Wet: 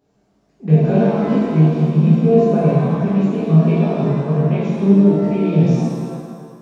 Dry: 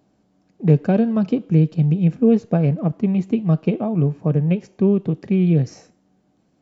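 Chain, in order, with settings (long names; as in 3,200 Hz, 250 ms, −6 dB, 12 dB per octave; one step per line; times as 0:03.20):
multi-voice chorus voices 6, 0.38 Hz, delay 22 ms, depth 2.8 ms
reverb with rising layers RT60 1.8 s, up +7 semitones, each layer −8 dB, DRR −7.5 dB
level −2 dB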